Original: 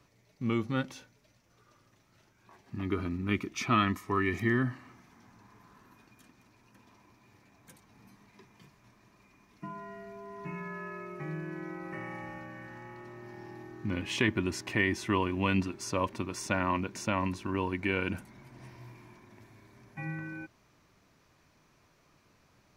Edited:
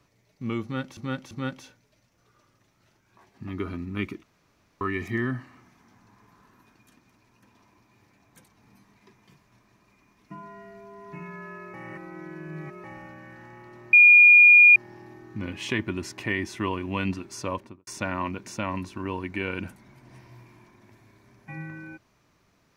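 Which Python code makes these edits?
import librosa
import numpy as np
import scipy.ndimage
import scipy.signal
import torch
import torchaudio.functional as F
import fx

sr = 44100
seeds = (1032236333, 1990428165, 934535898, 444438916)

y = fx.studio_fade_out(x, sr, start_s=15.97, length_s=0.39)
y = fx.edit(y, sr, fx.repeat(start_s=0.63, length_s=0.34, count=3),
    fx.room_tone_fill(start_s=3.55, length_s=0.58),
    fx.reverse_span(start_s=11.06, length_s=1.1),
    fx.insert_tone(at_s=13.25, length_s=0.83, hz=2430.0, db=-9.5), tone=tone)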